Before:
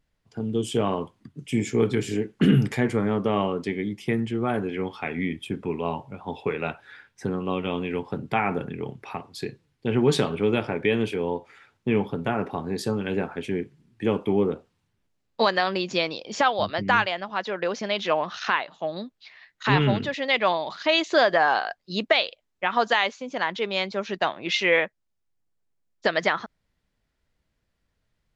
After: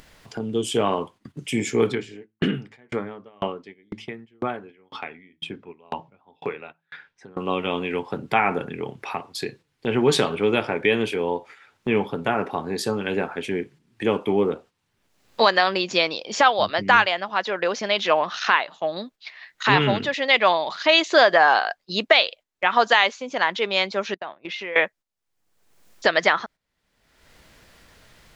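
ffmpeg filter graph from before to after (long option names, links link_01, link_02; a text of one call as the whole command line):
ffmpeg -i in.wav -filter_complex "[0:a]asettb=1/sr,asplit=3[link_01][link_02][link_03];[link_01]atrim=end=1.924[link_04];[link_02]atrim=start=1.92:end=7.37,asetpts=PTS-STARTPTS,afade=type=in:duration=0.004:curve=qsin,afade=type=out:start_time=5.446:duration=0.004:curve=qsin,lowpass=4700,bandreject=frequency=54.3:width_type=h:width=4,bandreject=frequency=108.6:width_type=h:width=4,bandreject=frequency=162.9:width_type=h:width=4,bandreject=frequency=217.2:width_type=h:width=4,bandreject=frequency=271.5:width_type=h:width=4,bandreject=frequency=325.8:width_type=h:width=4,aeval=exprs='val(0)*pow(10,-37*if(lt(mod(2*n/s,1),2*abs(2)/1000),1-mod(2*n/s,1)/(2*abs(2)/1000),(mod(2*n/s,1)-2*abs(2)/1000)/(1-2*abs(2)/1000))/20)':channel_layout=same[link_05];[link_03]atrim=start=7.366[link_06];[link_04][link_05]acrossfade=duration=0.004:curve1=hsin:curve2=qsin[link_07];[link_07][link_06]acrossfade=duration=0.004:curve1=qsin:curve2=hsin,asettb=1/sr,asplit=3[link_08][link_09][link_10];[link_08]atrim=end=24.144[link_11];[link_09]atrim=start=24.14:end=24.76,asetpts=PTS-STARTPTS,afade=type=in:duration=0.004:curve=qsin,afade=type=out:start_time=0.616:duration=0.004:curve=qsin,agate=range=-33dB:threshold=-30dB:ratio=3:release=100:detection=peak,lowpass=frequency=1500:poles=1,acompressor=threshold=-39dB:ratio=2.5:attack=3.2:release=140:knee=1:detection=peak[link_12];[link_10]atrim=start=24.756[link_13];[link_11][link_12]acrossfade=duration=0.004:curve1=hsin:curve2=qsin[link_14];[link_14][link_13]acrossfade=duration=0.004:curve1=qsin:curve2=hsin,agate=range=-9dB:threshold=-46dB:ratio=16:detection=peak,lowshelf=frequency=270:gain=-10.5,acompressor=mode=upward:threshold=-33dB:ratio=2.5,volume=5.5dB" out.wav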